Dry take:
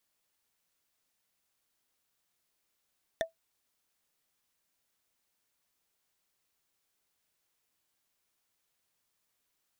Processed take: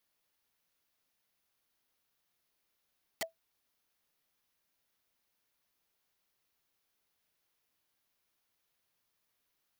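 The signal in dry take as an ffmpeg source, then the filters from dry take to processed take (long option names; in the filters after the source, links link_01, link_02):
-f lavfi -i "aevalsrc='0.0708*pow(10,-3*t/0.13)*sin(2*PI*655*t)+0.0501*pow(10,-3*t/0.038)*sin(2*PI*1805.8*t)+0.0355*pow(10,-3*t/0.017)*sin(2*PI*3539.6*t)+0.0251*pow(10,-3*t/0.009)*sin(2*PI*5851.1*t)+0.0178*pow(10,-3*t/0.006)*sin(2*PI*8737.7*t)':duration=0.45:sample_rate=44100"
-af "equalizer=frequency=7900:width=2.2:gain=-7.5,aeval=exprs='(mod(33.5*val(0)+1,2)-1)/33.5':channel_layout=same"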